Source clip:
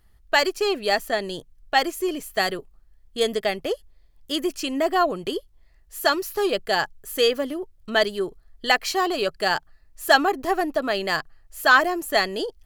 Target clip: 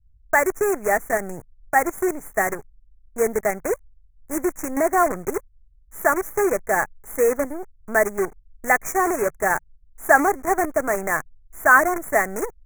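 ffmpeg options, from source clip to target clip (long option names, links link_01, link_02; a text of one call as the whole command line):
ffmpeg -i in.wav -filter_complex "[0:a]acrossover=split=140[link_01][link_02];[link_02]acrusher=bits=5:dc=4:mix=0:aa=0.000001[link_03];[link_01][link_03]amix=inputs=2:normalize=0,asuperstop=centerf=3700:order=12:qfactor=0.93,volume=2dB" out.wav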